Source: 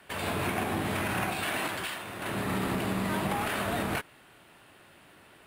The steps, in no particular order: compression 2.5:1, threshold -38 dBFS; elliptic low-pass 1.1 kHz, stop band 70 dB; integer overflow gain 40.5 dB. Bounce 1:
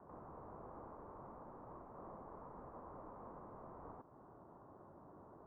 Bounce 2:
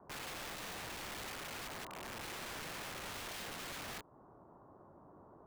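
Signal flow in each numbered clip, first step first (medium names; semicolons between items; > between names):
compression > integer overflow > elliptic low-pass; compression > elliptic low-pass > integer overflow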